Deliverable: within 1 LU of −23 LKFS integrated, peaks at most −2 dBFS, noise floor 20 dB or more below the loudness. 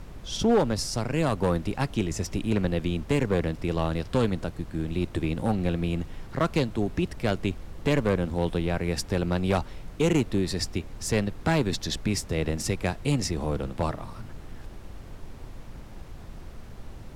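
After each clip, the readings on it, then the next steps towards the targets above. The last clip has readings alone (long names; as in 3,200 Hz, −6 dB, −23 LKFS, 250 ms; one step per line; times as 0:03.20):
share of clipped samples 0.7%; peaks flattened at −16.0 dBFS; background noise floor −43 dBFS; target noise floor −48 dBFS; integrated loudness −27.5 LKFS; sample peak −16.0 dBFS; target loudness −23.0 LKFS
→ clipped peaks rebuilt −16 dBFS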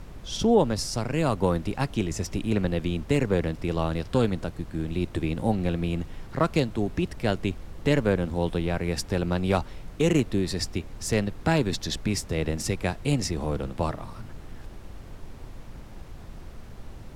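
share of clipped samples 0.0%; background noise floor −43 dBFS; target noise floor −47 dBFS
→ noise reduction from a noise print 6 dB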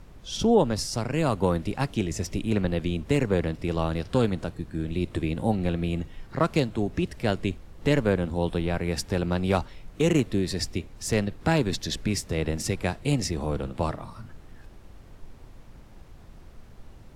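background noise floor −48 dBFS; integrated loudness −27.0 LKFS; sample peak −8.5 dBFS; target loudness −23.0 LKFS
→ level +4 dB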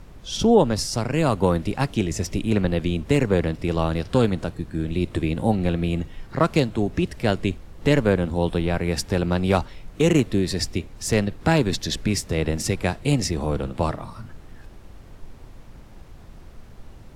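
integrated loudness −23.0 LKFS; sample peak −4.5 dBFS; background noise floor −44 dBFS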